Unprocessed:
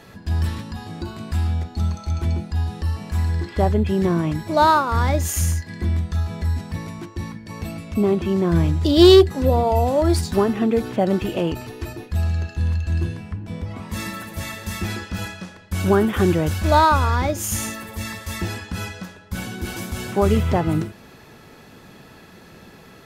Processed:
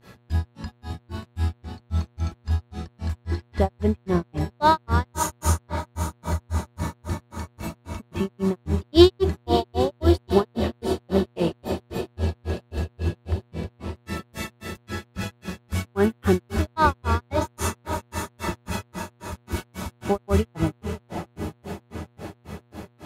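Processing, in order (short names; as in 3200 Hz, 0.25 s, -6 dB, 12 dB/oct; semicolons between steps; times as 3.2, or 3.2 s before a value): diffused feedback echo 0.628 s, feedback 69%, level -9 dB; grains 0.187 s, grains 3.7/s, pitch spread up and down by 0 st; buzz 120 Hz, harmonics 36, -60 dBFS -7 dB/oct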